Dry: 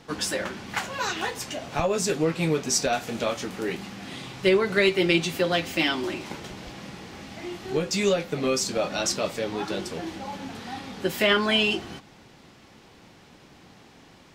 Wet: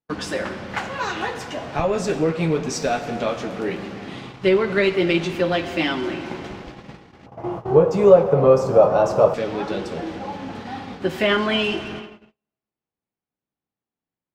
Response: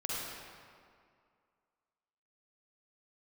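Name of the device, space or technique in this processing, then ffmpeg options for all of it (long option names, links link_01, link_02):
saturated reverb return: -filter_complex "[0:a]asplit=2[link_01][link_02];[1:a]atrim=start_sample=2205[link_03];[link_02][link_03]afir=irnorm=-1:irlink=0,asoftclip=type=tanh:threshold=-22dB,volume=-7dB[link_04];[link_01][link_04]amix=inputs=2:normalize=0,aemphasis=mode=reproduction:type=75kf,agate=range=-45dB:threshold=-36dB:ratio=16:detection=peak,asettb=1/sr,asplit=3[link_05][link_06][link_07];[link_05]atrim=end=7.264[link_08];[link_06]atrim=start=7.26:end=9.34,asetpts=PTS-STARTPTS,afade=type=in:duration=0.004:curve=qsin,afade=type=out:start_time=2.076:duration=0.004:curve=qsin,equalizer=frequency=125:width_type=o:width=1:gain=12,equalizer=frequency=250:width_type=o:width=1:gain=-7,equalizer=frequency=500:width_type=o:width=1:gain=10,equalizer=frequency=1000:width_type=o:width=1:gain=11,equalizer=frequency=2000:width_type=o:width=1:gain=-9,equalizer=frequency=4000:width_type=o:width=1:gain=-10,equalizer=frequency=8000:width_type=o:width=1:gain=-6[link_09];[link_07]atrim=start=9.336[link_10];[link_08][link_09]acrossfade=duration=0.004:curve1=hsin:curve2=qsin[link_11];[link_11][link_10]acrossfade=duration=0.004:curve1=qsin:curve2=hsin,volume=2dB"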